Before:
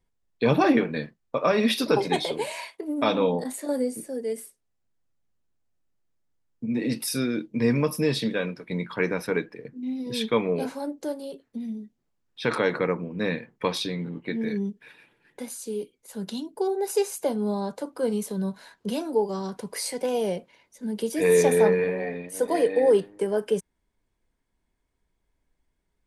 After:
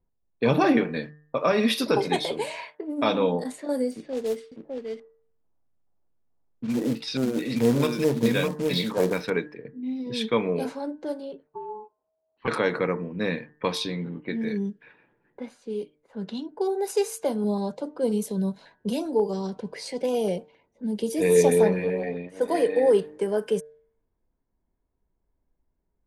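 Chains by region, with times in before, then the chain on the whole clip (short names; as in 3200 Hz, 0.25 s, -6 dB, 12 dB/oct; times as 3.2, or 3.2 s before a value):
3.91–9.3 echo 0.605 s -4 dB + LFO low-pass square 2.3 Hz 820–3900 Hz + short-mantissa float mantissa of 2-bit
11.47–12.48 air absorption 440 m + ring modulator 640 Hz
17.44–22.27 low shelf 490 Hz +2.5 dB + LFO notch saw up 7.4 Hz 970–2200 Hz
whole clip: low-pass opened by the level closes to 980 Hz, open at -23 dBFS; de-hum 150.3 Hz, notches 13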